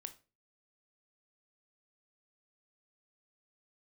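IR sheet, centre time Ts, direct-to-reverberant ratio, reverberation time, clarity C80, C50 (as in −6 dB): 6 ms, 9.0 dB, 0.35 s, 21.5 dB, 15.5 dB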